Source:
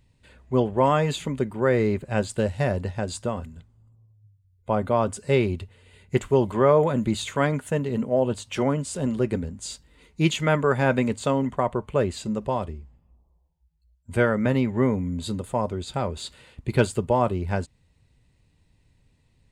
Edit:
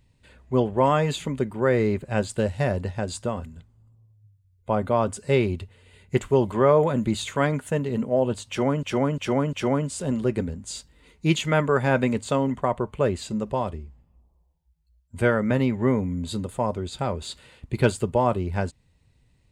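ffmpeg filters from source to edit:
-filter_complex "[0:a]asplit=4[a][b][c][d];[a]atrim=end=8.832[e];[b]atrim=start=8.478:end=8.832[f];[c]atrim=start=8.478:end=8.832[g];[d]atrim=start=8.478[h];[e][f]acrossfade=d=0.004:c1=hsin:c2=hsin[i];[i][g]acrossfade=d=0.004:c1=hsin:c2=hsin[j];[j][h]acrossfade=d=0.004:c1=hsin:c2=hsin"

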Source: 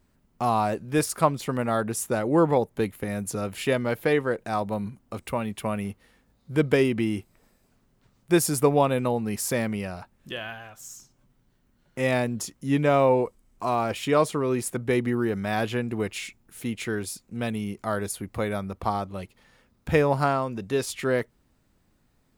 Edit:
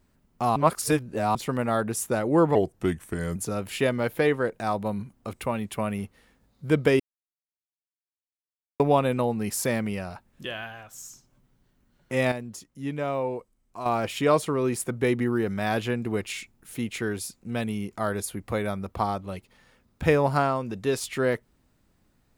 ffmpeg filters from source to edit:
-filter_complex "[0:a]asplit=9[a][b][c][d][e][f][g][h][i];[a]atrim=end=0.562[j];[b]atrim=start=0.558:end=1.352,asetpts=PTS-STARTPTS,areverse[k];[c]atrim=start=1.348:end=2.554[l];[d]atrim=start=2.55:end=3.22,asetpts=PTS-STARTPTS,asetrate=36603,aresample=44100[m];[e]atrim=start=3.216:end=6.86,asetpts=PTS-STARTPTS,afade=t=out:st=3.64:d=0.004:c=hsin[n];[f]atrim=start=6.86:end=8.66,asetpts=PTS-STARTPTS,volume=0[o];[g]atrim=start=8.66:end=12.182,asetpts=PTS-STARTPTS,afade=t=in:d=0.004:c=hsin[p];[h]atrim=start=12.178:end=13.722,asetpts=PTS-STARTPTS,volume=-8.5dB[q];[i]atrim=start=13.718[r];[j][k]acrossfade=d=0.004:c1=hsin:c2=hsin[s];[s][l]acrossfade=d=0.004:c1=hsin:c2=hsin[t];[t][m]acrossfade=d=0.004:c1=hsin:c2=hsin[u];[n][o][p]concat=n=3:v=0:a=1[v];[u][v]acrossfade=d=0.004:c1=hsin:c2=hsin[w];[w][q]acrossfade=d=0.004:c1=hsin:c2=hsin[x];[x][r]acrossfade=d=0.004:c1=hsin:c2=hsin"

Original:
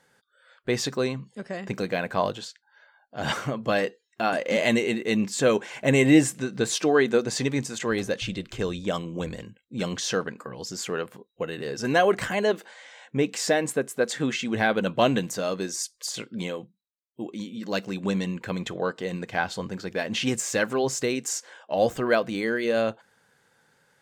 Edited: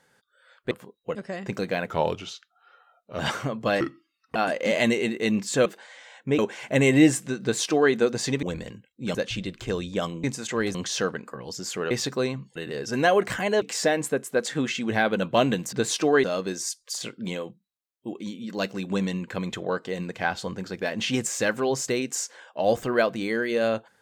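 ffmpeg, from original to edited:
-filter_complex "[0:a]asplit=18[a][b][c][d][e][f][g][h][i][j][k][l][m][n][o][p][q][r];[a]atrim=end=0.712[s];[b]atrim=start=11.028:end=11.472[t];[c]atrim=start=1.358:end=2.084[u];[d]atrim=start=2.08:end=3.22,asetpts=PTS-STARTPTS,asetrate=37926,aresample=44100,atrim=end_sample=58458,asetpts=PTS-STARTPTS[v];[e]atrim=start=3.216:end=3.834[w];[f]atrim=start=3.83:end=4.21,asetpts=PTS-STARTPTS,asetrate=30429,aresample=44100[x];[g]atrim=start=4.206:end=5.512[y];[h]atrim=start=12.528:end=13.262[z];[i]atrim=start=5.508:end=7.552[aa];[j]atrim=start=9.148:end=9.872[ab];[k]atrim=start=8.058:end=9.152[ac];[l]atrim=start=7.548:end=8.062[ad];[m]atrim=start=9.868:end=11.032[ae];[n]atrim=start=0.708:end=1.362[af];[o]atrim=start=11.468:end=12.532[ag];[p]atrim=start=13.258:end=15.372[ah];[q]atrim=start=6.538:end=7.052[ai];[r]atrim=start=15.368[aj];[s][t]acrossfade=d=0.004:c1=hsin:c2=hsin[ak];[ak][u]acrossfade=d=0.004:c1=hsin:c2=hsin[al];[al][v]acrossfade=d=0.004:c1=hsin:c2=hsin[am];[am][w]acrossfade=d=0.004:c1=hsin:c2=hsin[an];[an][x]acrossfade=d=0.004:c1=hsin:c2=hsin[ao];[ao][y]acrossfade=d=0.004:c1=hsin:c2=hsin[ap];[ap][z]acrossfade=d=0.004:c1=hsin:c2=hsin[aq];[aq][aa]acrossfade=d=0.004:c1=hsin:c2=hsin[ar];[ar][ab]acrossfade=d=0.004:c1=hsin:c2=hsin[as];[as][ac]acrossfade=d=0.004:c1=hsin:c2=hsin[at];[at][ad]acrossfade=d=0.004:c1=hsin:c2=hsin[au];[au][ae]acrossfade=d=0.004:c1=hsin:c2=hsin[av];[av][af]acrossfade=d=0.004:c1=hsin:c2=hsin[aw];[aw][ag]acrossfade=d=0.004:c1=hsin:c2=hsin[ax];[ax][ah]acrossfade=d=0.004:c1=hsin:c2=hsin[ay];[ay][ai]acrossfade=d=0.004:c1=hsin:c2=hsin[az];[az][aj]acrossfade=d=0.004:c1=hsin:c2=hsin"

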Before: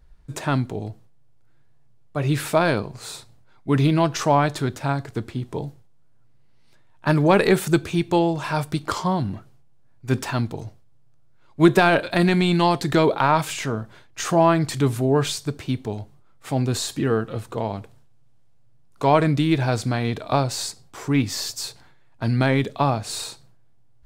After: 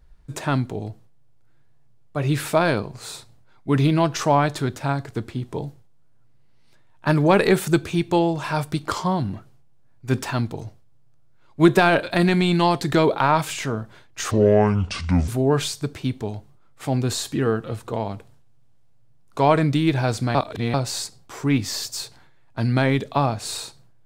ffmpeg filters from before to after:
-filter_complex "[0:a]asplit=5[a][b][c][d][e];[a]atrim=end=14.314[f];[b]atrim=start=14.31:end=14.92,asetpts=PTS-STARTPTS,asetrate=27783,aresample=44100[g];[c]atrim=start=14.916:end=19.992[h];[d]atrim=start=19.988:end=20.382,asetpts=PTS-STARTPTS,areverse[i];[e]atrim=start=20.378[j];[f][g]acrossfade=d=0.004:c1=hsin:c2=hsin[k];[k][h]acrossfade=d=0.004:c1=hsin:c2=hsin[l];[l][i]acrossfade=d=0.004:c1=hsin:c2=hsin[m];[m][j]acrossfade=d=0.004:c1=hsin:c2=hsin"

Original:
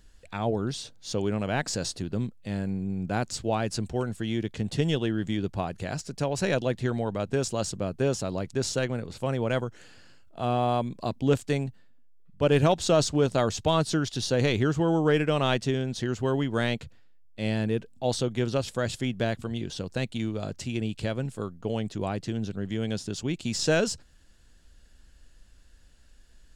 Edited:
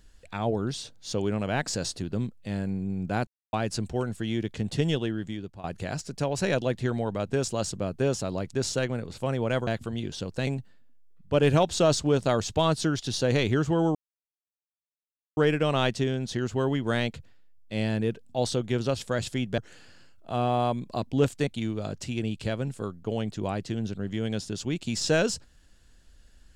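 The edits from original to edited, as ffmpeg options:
-filter_complex "[0:a]asplit=9[a][b][c][d][e][f][g][h][i];[a]atrim=end=3.27,asetpts=PTS-STARTPTS,afade=t=out:st=3.266:d=0.004:c=hsin[j];[b]atrim=start=3.27:end=3.53,asetpts=PTS-STARTPTS,volume=0[k];[c]atrim=start=3.53:end=5.64,asetpts=PTS-STARTPTS,afade=t=in:d=0.004:c=hsin,afade=t=out:st=1.37:d=0.74:silence=0.149624[l];[d]atrim=start=5.64:end=9.672,asetpts=PTS-STARTPTS,afade=t=in:d=0.004:c=hsin:silence=0.149624[m];[e]atrim=start=19.248:end=20.052[n];[f]atrim=start=11.558:end=15.04,asetpts=PTS-STARTPTS,afade=t=out:st=3.478:d=0.004:c=hsin,apad=pad_dur=1.42[o];[g]atrim=start=15.04:end=19.252,asetpts=PTS-STARTPTS,afade=t=in:d=0.004:c=hsin[p];[h]atrim=start=9.668:end=11.562[q];[i]atrim=start=20.048[r];[j][k][l][m]concat=n=4:v=0:a=1[s];[s][n]acrossfade=d=0.004:c1=hsin:c2=hsin[t];[o][p]concat=n=2:v=0:a=1[u];[t][u]acrossfade=d=0.004:c1=hsin:c2=hsin[v];[v][q]acrossfade=d=0.004:c1=hsin:c2=hsin[w];[w][r]acrossfade=d=0.004:c1=hsin:c2=hsin"

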